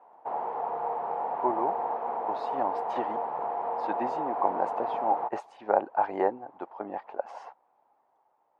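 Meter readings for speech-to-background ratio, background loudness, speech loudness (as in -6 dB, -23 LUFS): -0.5 dB, -32.0 LUFS, -32.5 LUFS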